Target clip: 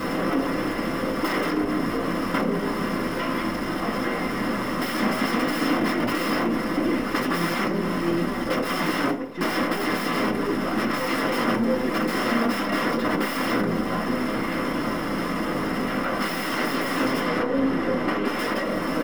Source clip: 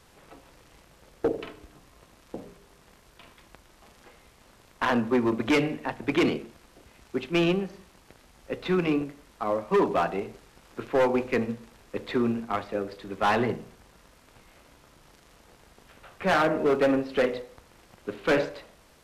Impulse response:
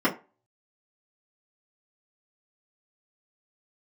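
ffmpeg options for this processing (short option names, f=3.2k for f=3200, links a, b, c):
-filter_complex "[0:a]aeval=exprs='val(0)+0.5*0.0158*sgn(val(0))':c=same,aeval=exprs='0.158*(cos(1*acos(clip(val(0)/0.158,-1,1)))-cos(1*PI/2))+0.0447*(cos(8*acos(clip(val(0)/0.158,-1,1)))-cos(8*PI/2))':c=same,asplit=3[a][b][c];[a]afade=t=out:st=8.61:d=0.02[d];[b]agate=range=-33dB:threshold=-27dB:ratio=3:detection=peak,afade=t=in:st=8.61:d=0.02,afade=t=out:st=9.58:d=0.02[e];[c]afade=t=in:st=9.58:d=0.02[f];[d][e][f]amix=inputs=3:normalize=0,aecho=1:1:687:0.0794,aeval=exprs='(mod(20*val(0)+1,2)-1)/20':c=same,acompressor=threshold=-35dB:ratio=6,asettb=1/sr,asplit=3[g][h][i];[g]atrim=end=17.204[j];[h]atrim=start=17.2:end=18.39,asetpts=PTS-STARTPTS,afade=t=in:d=0.004:c=qsin,afade=t=out:st=1.186:d=0.004:c=qsin,aemphasis=mode=reproduction:type=cd[k];[i]atrim=start=18.386[l];[j][k]acrossfade=d=0.004:c1=hsin:c2=qsin[m];[m][l]acrossfade=d=0.004:c1=qsin:c2=hsin[n];[1:a]atrim=start_sample=2205[o];[n][o]afir=irnorm=-1:irlink=0"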